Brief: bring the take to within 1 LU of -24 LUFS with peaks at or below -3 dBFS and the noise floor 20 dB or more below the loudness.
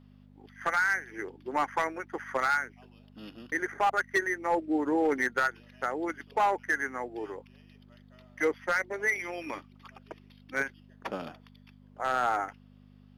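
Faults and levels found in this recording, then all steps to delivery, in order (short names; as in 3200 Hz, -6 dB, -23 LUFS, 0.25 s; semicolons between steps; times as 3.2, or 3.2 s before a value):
clipped 0.6%; flat tops at -19.5 dBFS; hum 50 Hz; harmonics up to 250 Hz; hum level -53 dBFS; loudness -30.5 LUFS; peak -19.5 dBFS; loudness target -24.0 LUFS
-> clip repair -19.5 dBFS; de-hum 50 Hz, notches 5; gain +6.5 dB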